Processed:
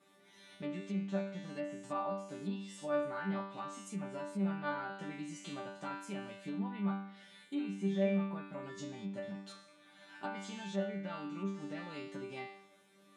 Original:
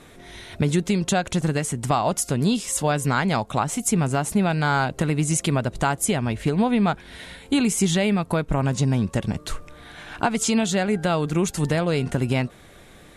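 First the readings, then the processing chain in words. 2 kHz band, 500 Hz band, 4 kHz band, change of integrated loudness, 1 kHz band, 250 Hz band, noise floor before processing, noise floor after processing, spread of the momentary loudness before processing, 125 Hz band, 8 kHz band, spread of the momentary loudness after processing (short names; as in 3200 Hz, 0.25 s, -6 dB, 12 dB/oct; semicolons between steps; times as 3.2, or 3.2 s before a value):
-17.5 dB, -14.5 dB, -21.0 dB, -17.0 dB, -18.0 dB, -15.5 dB, -48 dBFS, -64 dBFS, 6 LU, -21.5 dB, -29.0 dB, 10 LU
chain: resonator bank G3 fifth, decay 0.64 s; treble ducked by the level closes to 2300 Hz, closed at -37 dBFS; HPF 120 Hz 24 dB/oct; gain +1.5 dB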